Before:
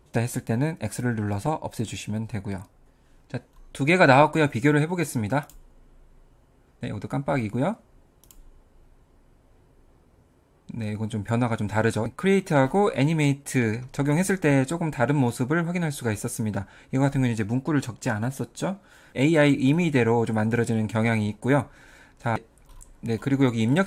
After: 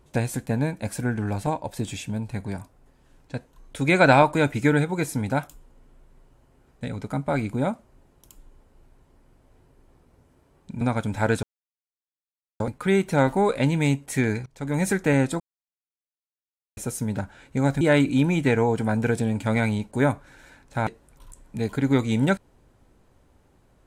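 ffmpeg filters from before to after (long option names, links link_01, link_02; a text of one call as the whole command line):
ffmpeg -i in.wav -filter_complex "[0:a]asplit=7[link_01][link_02][link_03][link_04][link_05][link_06][link_07];[link_01]atrim=end=10.812[link_08];[link_02]atrim=start=11.358:end=11.98,asetpts=PTS-STARTPTS,afade=type=out:start_time=0.618:duration=0.004:curve=hsin,apad=pad_dur=1.17[link_09];[link_03]atrim=start=11.98:end=13.84,asetpts=PTS-STARTPTS,afade=type=in:duration=0.004:curve=hsin,afade=type=out:start_time=1.856:duration=0.004:curve=hsin:silence=0.0749894[link_10];[link_04]atrim=start=13.84:end=14.78,asetpts=PTS-STARTPTS,afade=type=in:duration=0.41:silence=0.0749894,afade=type=out:start_time=0.936:duration=0.004:curve=hsin[link_11];[link_05]atrim=start=14.78:end=16.15,asetpts=PTS-STARTPTS,volume=0[link_12];[link_06]atrim=start=16.15:end=17.192,asetpts=PTS-STARTPTS,afade=type=in:duration=0.004:curve=hsin[link_13];[link_07]atrim=start=19.298[link_14];[link_09][link_10][link_11][link_12][link_13]concat=n=5:v=0:a=1[link_15];[link_08][link_15]acrossfade=duration=0.004:curve1=hsin:curve2=hsin[link_16];[link_16][link_14]acrossfade=duration=0.004:curve1=hsin:curve2=hsin" out.wav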